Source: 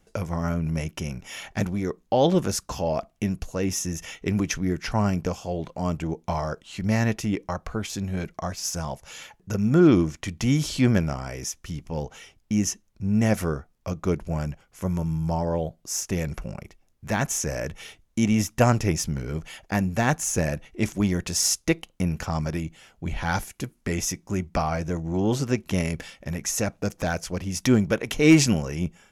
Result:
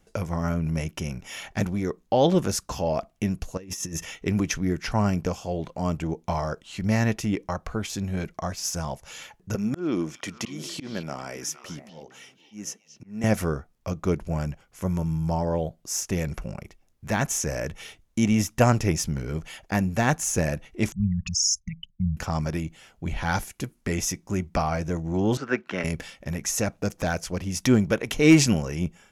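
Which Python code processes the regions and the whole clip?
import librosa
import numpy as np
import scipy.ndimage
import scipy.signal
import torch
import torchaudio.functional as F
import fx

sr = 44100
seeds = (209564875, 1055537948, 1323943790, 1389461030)

y = fx.chain(x, sr, fx.over_compress(threshold_db=-32.0, ratio=-0.5),
    fx.notch_comb(f0_hz=730.0), at=(3.57, 4.04))
y = fx.chain(y, sr, fx.highpass(hz=210.0, slope=12),
    fx.auto_swell(attack_ms=397.0),
    fx.echo_stepped(ms=231, hz=3500.0, octaves=-1.4, feedback_pct=70, wet_db=-7.5), at=(9.55, 13.24))
y = fx.chain(y, sr, fx.envelope_sharpen(power=3.0),
    fx.brickwall_bandstop(low_hz=220.0, high_hz=1100.0), at=(20.92, 22.17))
y = fx.chain(y, sr, fx.bandpass_edges(low_hz=280.0, high_hz=3400.0),
    fx.peak_eq(hz=1500.0, db=13.5, octaves=0.58),
    fx.band_widen(depth_pct=40), at=(25.37, 25.84))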